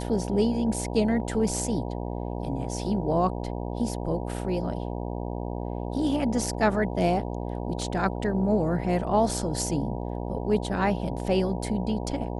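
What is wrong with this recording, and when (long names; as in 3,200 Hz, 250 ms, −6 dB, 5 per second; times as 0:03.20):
mains buzz 60 Hz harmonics 16 −32 dBFS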